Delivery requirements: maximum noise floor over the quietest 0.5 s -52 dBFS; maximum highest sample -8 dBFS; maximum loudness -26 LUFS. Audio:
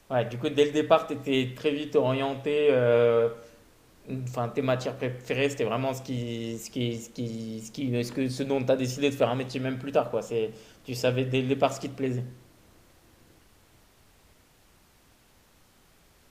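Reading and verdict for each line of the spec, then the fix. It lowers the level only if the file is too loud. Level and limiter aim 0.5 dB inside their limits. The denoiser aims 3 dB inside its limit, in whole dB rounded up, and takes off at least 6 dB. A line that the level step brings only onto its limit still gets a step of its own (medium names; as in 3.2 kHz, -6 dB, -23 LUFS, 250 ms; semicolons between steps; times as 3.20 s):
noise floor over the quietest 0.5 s -60 dBFS: pass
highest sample -6.0 dBFS: fail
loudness -27.5 LUFS: pass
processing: peak limiter -8.5 dBFS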